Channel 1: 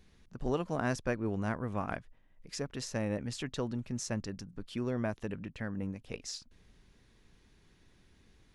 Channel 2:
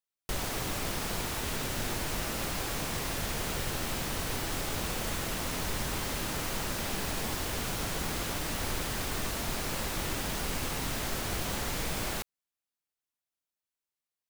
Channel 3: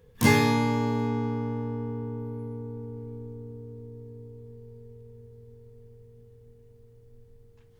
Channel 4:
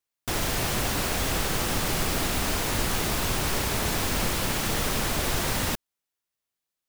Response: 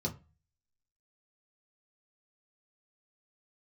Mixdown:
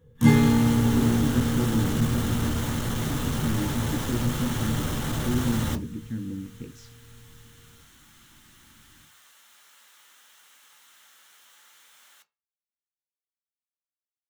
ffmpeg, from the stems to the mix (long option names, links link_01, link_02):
-filter_complex "[0:a]lowshelf=frequency=460:width_type=q:width=3:gain=10.5,adelay=500,volume=-10dB,asplit=2[link_01][link_02];[link_02]volume=-12dB[link_03];[1:a]highpass=1500,volume=-16.5dB,asplit=2[link_04][link_05];[link_05]volume=-6.5dB[link_06];[2:a]volume=-4dB,asplit=2[link_07][link_08];[link_08]volume=-6dB[link_09];[3:a]asoftclip=type=tanh:threshold=-28.5dB,volume=0dB,asplit=2[link_10][link_11];[link_11]volume=-5.5dB[link_12];[4:a]atrim=start_sample=2205[link_13];[link_03][link_06][link_09][link_12]amix=inputs=4:normalize=0[link_14];[link_14][link_13]afir=irnorm=-1:irlink=0[link_15];[link_01][link_04][link_07][link_10][link_15]amix=inputs=5:normalize=0"